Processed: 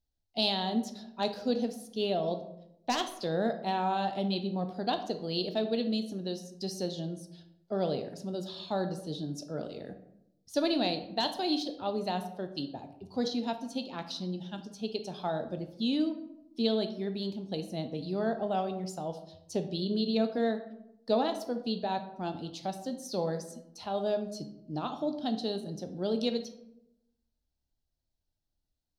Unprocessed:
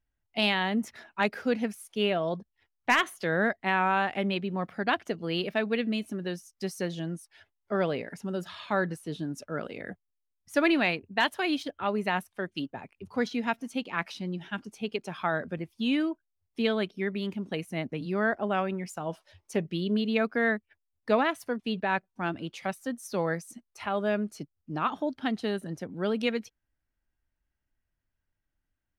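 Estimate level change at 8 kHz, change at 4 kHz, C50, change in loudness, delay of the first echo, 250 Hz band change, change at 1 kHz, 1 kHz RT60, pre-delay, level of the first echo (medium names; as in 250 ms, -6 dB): -0.5 dB, 0.0 dB, 10.5 dB, -3.0 dB, no echo, -2.0 dB, -3.5 dB, 0.75 s, 10 ms, no echo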